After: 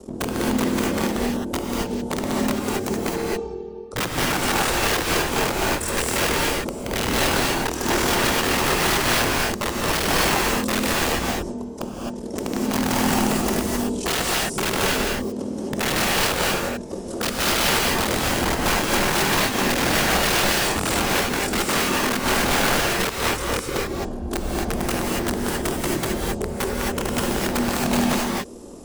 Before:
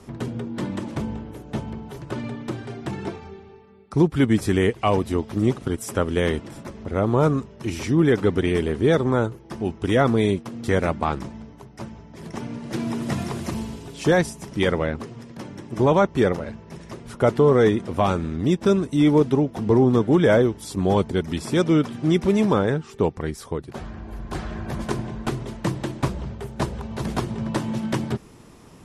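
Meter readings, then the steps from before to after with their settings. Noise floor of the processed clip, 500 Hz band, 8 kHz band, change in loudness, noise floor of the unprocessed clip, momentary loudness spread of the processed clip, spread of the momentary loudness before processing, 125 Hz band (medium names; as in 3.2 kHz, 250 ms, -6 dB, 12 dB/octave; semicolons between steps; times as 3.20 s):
-32 dBFS, -3.0 dB, +16.0 dB, +1.0 dB, -46 dBFS, 8 LU, 16 LU, -5.0 dB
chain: ring modulator 20 Hz; bass shelf 190 Hz +5 dB; compression 2:1, threshold -25 dBFS, peak gain reduction 7.5 dB; graphic EQ 125/250/500/2000/8000 Hz -9/+6/+11/-9/+10 dB; integer overflow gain 18.5 dB; gated-style reverb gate 290 ms rising, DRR -3 dB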